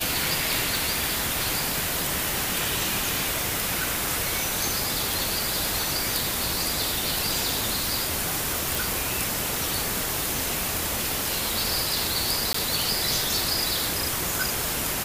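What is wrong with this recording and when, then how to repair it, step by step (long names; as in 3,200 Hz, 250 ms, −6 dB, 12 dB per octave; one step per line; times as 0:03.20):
0:00.77: click
0:08.75: click
0:12.53–0:12.54: drop-out 14 ms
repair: click removal
repair the gap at 0:12.53, 14 ms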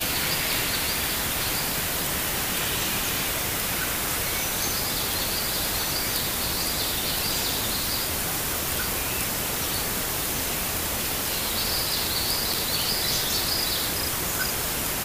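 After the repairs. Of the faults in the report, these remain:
none of them is left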